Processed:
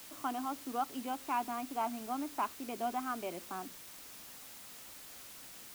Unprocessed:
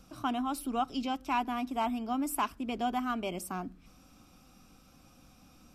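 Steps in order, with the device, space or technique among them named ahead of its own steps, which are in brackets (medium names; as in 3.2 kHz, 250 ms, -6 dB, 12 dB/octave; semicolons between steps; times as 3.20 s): wax cylinder (band-pass 300–2000 Hz; wow and flutter; white noise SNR 11 dB); trim -3 dB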